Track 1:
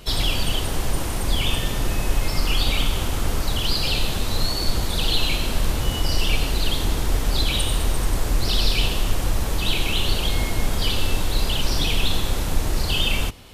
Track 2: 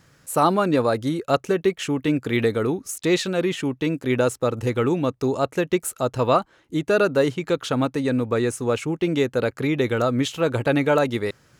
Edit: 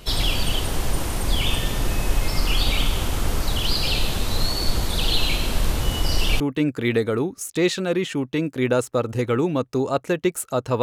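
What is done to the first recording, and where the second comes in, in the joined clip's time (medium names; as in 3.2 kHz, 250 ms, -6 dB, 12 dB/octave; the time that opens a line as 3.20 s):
track 1
6.40 s: go over to track 2 from 1.88 s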